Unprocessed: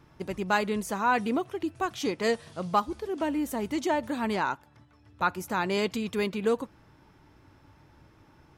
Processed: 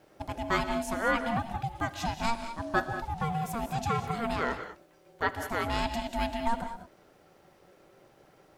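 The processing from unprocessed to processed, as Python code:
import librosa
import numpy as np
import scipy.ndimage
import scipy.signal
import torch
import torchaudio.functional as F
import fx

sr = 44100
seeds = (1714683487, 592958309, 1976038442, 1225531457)

y = fx.dmg_noise_colour(x, sr, seeds[0], colour='pink', level_db=-68.0)
y = fx.rev_gated(y, sr, seeds[1], gate_ms=230, shape='rising', drr_db=8.0)
y = y * np.sin(2.0 * np.pi * 460.0 * np.arange(len(y)) / sr)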